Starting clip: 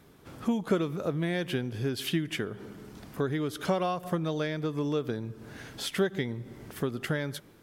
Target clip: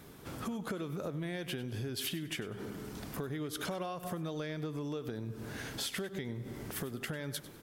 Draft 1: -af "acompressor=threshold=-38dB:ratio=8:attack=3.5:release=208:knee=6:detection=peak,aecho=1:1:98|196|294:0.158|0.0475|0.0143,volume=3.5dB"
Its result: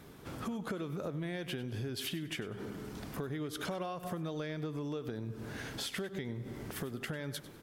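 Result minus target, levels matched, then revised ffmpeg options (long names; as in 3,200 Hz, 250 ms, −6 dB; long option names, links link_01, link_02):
8,000 Hz band −3.0 dB
-af "acompressor=threshold=-38dB:ratio=8:attack=3.5:release=208:knee=6:detection=peak,highshelf=frequency=6400:gain=5.5,aecho=1:1:98|196|294:0.158|0.0475|0.0143,volume=3.5dB"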